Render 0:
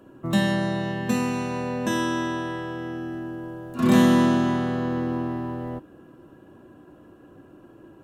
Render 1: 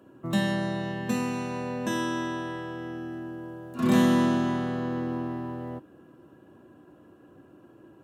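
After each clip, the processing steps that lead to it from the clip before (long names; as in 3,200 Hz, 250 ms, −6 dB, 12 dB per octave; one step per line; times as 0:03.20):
high-pass filter 75 Hz
level −4 dB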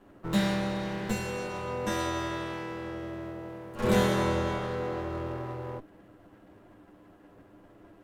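lower of the sound and its delayed copy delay 9.9 ms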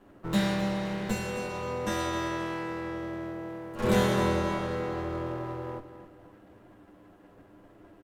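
repeating echo 261 ms, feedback 38%, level −12.5 dB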